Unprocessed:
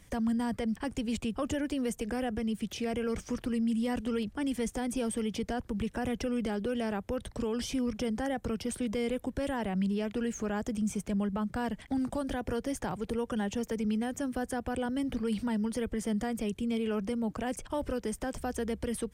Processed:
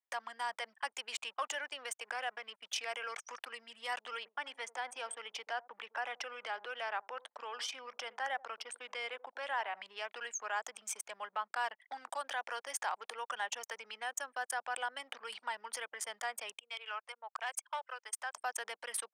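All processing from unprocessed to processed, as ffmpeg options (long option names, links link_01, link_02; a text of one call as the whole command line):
ffmpeg -i in.wav -filter_complex "[0:a]asettb=1/sr,asplit=3[link_01][link_02][link_03];[link_01]atrim=end=1.124[link_04];[link_02]atrim=start=1.12:end=2.67,asetpts=PTS-STARTPTS,afade=type=in:duration=0.004:curve=qsin,afade=type=out:start_time=1.546:duration=0.004:curve=qsin,highshelf=frequency=10000:gain=-4.5,aeval=exprs='sgn(val(0))*max(abs(val(0))-0.00119,0)':channel_layout=same[link_05];[link_03]atrim=start=2.666[link_06];[link_04][link_05]acrossfade=duration=0.004:curve1=hsin:curve2=qsin[link_07];[link_07][link_06]acrossfade=duration=0.004:curve1=qsin:curve2=hsin,asettb=1/sr,asplit=3[link_08][link_09][link_10];[link_08]atrim=end=4.174[link_11];[link_09]atrim=start=4.17:end=9.82,asetpts=PTS-STARTPTS,afade=type=in:duration=0.004:curve=qsin,afade=type=out:start_time=5.646:duration=0.004:curve=qsin,highshelf=frequency=6400:gain=-11.5,asplit=2[link_12][link_13];[link_13]adelay=84,lowpass=frequency=1400:poles=1,volume=-15dB,asplit=2[link_14][link_15];[link_15]adelay=84,lowpass=frequency=1400:poles=1,volume=0.16[link_16];[link_12][link_14][link_16]amix=inputs=3:normalize=0,atrim=end_sample=249165[link_17];[link_10]atrim=start=9.816[link_18];[link_11][link_17]acrossfade=duration=0.004:curve1=hsin:curve2=qsin[link_19];[link_19][link_18]acrossfade=duration=0.004:curve1=qsin:curve2=hsin,asettb=1/sr,asplit=3[link_20][link_21][link_22];[link_20]atrim=end=16.604[link_23];[link_21]atrim=start=16.6:end=18.34,asetpts=PTS-STARTPTS,afade=type=in:duration=0.004:curve=qsin,afade=type=out:start_time=1.736:duration=0.004:curve=qsin,highpass=730,asoftclip=type=hard:threshold=-31.5dB[link_24];[link_22]atrim=start=18.336[link_25];[link_23][link_24]acrossfade=duration=0.004:curve1=hsin:curve2=qsin[link_26];[link_26][link_25]acrossfade=duration=0.004:curve1=qsin:curve2=hsin,anlmdn=0.251,highpass=frequency=840:width=0.5412,highpass=frequency=840:width=1.3066,volume=4.5dB" out.wav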